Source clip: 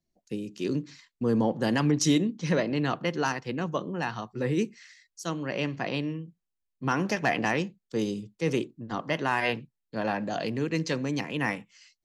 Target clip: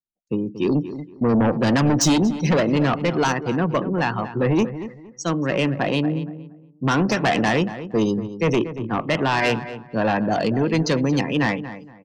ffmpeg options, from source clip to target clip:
ffmpeg -i in.wav -filter_complex "[0:a]acontrast=55,adynamicequalizer=threshold=0.01:dfrequency=2200:dqfactor=2.5:tfrequency=2200:tqfactor=2.5:attack=5:release=100:ratio=0.375:range=2:mode=cutabove:tftype=bell,afftdn=noise_reduction=32:noise_floor=-35,aeval=exprs='0.447*(cos(1*acos(clip(val(0)/0.447,-1,1)))-cos(1*PI/2))+0.141*(cos(5*acos(clip(val(0)/0.447,-1,1)))-cos(5*PI/2))':channel_layout=same,asplit=2[link_01][link_02];[link_02]adelay=233,lowpass=frequency=1900:poles=1,volume=-12dB,asplit=2[link_03][link_04];[link_04]adelay=233,lowpass=frequency=1900:poles=1,volume=0.26,asplit=2[link_05][link_06];[link_06]adelay=233,lowpass=frequency=1900:poles=1,volume=0.26[link_07];[link_03][link_05][link_07]amix=inputs=3:normalize=0[link_08];[link_01][link_08]amix=inputs=2:normalize=0,volume=-3.5dB" out.wav

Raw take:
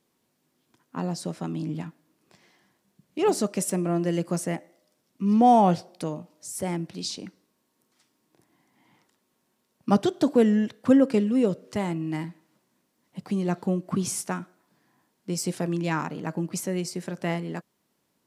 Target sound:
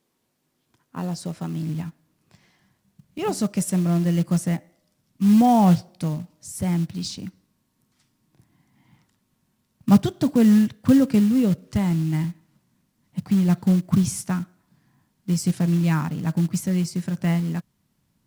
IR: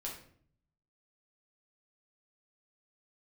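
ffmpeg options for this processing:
-af "asubboost=boost=10:cutoff=130,acrusher=bits=6:mode=log:mix=0:aa=0.000001"

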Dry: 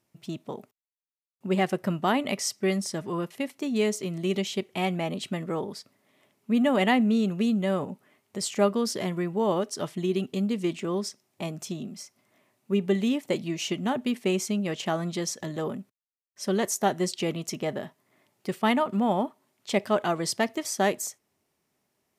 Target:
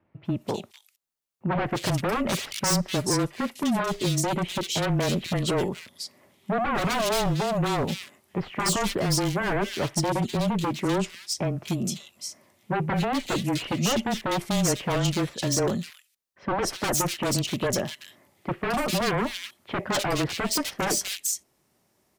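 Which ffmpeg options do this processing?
ffmpeg -i in.wav -filter_complex "[0:a]aeval=exprs='0.0447*(abs(mod(val(0)/0.0447+3,4)-2)-1)':channel_layout=same,acrossover=split=2400[link_01][link_02];[link_02]adelay=250[link_03];[link_01][link_03]amix=inputs=2:normalize=0,afreqshift=-20,volume=7.5dB" out.wav

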